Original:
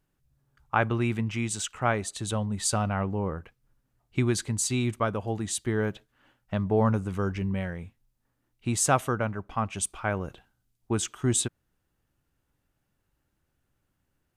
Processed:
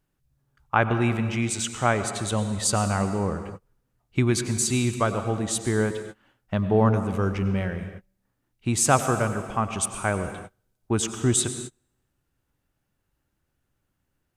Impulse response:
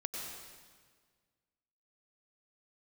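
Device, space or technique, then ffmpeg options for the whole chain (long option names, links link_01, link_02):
keyed gated reverb: -filter_complex "[0:a]asplit=3[link_01][link_02][link_03];[1:a]atrim=start_sample=2205[link_04];[link_02][link_04]afir=irnorm=-1:irlink=0[link_05];[link_03]apad=whole_len=633340[link_06];[link_05][link_06]sidechaingate=range=-33dB:threshold=-54dB:ratio=16:detection=peak,volume=-4dB[link_07];[link_01][link_07]amix=inputs=2:normalize=0"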